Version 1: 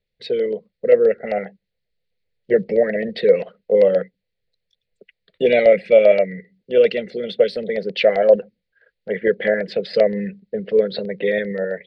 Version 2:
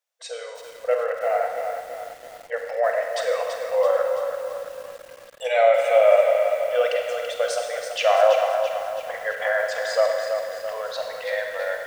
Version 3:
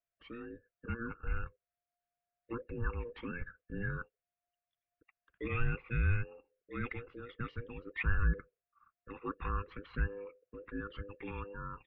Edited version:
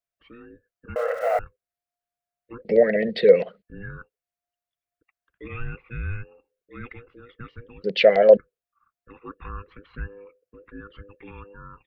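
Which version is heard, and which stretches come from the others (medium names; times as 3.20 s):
3
0.96–1.39 s: from 2
2.65–3.62 s: from 1
7.84–8.37 s: from 1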